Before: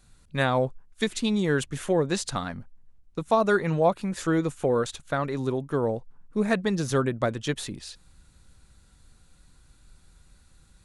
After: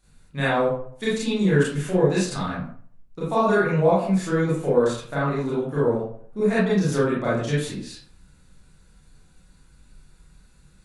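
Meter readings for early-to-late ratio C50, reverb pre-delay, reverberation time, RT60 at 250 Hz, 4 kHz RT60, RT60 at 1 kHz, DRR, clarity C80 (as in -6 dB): 1.0 dB, 27 ms, 0.55 s, 0.50 s, 0.35 s, 0.55 s, -9.5 dB, 6.0 dB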